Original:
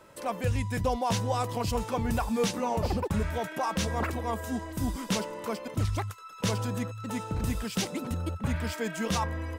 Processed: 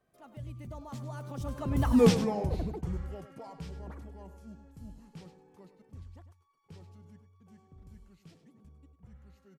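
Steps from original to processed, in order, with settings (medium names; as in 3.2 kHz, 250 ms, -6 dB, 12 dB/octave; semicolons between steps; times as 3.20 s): Doppler pass-by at 2.03 s, 56 m/s, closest 6.4 m; bass shelf 500 Hz +11 dB; delay 100 ms -12.5 dB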